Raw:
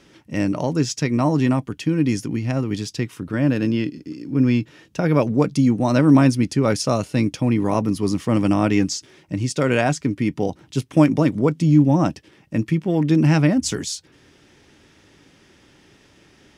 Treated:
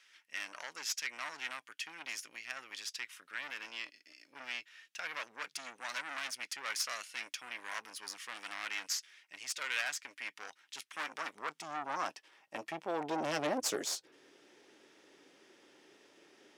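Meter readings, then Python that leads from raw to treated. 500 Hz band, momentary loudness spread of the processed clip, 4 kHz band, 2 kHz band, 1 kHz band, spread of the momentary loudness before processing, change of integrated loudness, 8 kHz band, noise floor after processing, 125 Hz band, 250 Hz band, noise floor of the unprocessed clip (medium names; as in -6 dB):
-21.0 dB, 11 LU, -7.5 dB, -8.0 dB, -13.5 dB, 11 LU, -19.5 dB, -9.0 dB, -72 dBFS, under -40 dB, -32.0 dB, -54 dBFS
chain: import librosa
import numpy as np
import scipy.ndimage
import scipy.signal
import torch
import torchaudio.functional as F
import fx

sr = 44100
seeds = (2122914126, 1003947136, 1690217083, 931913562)

y = fx.tube_stage(x, sr, drive_db=20.0, bias=0.7)
y = fx.filter_sweep_highpass(y, sr, from_hz=1800.0, to_hz=390.0, start_s=10.59, end_s=14.21, q=1.4)
y = y * librosa.db_to_amplitude(-5.0)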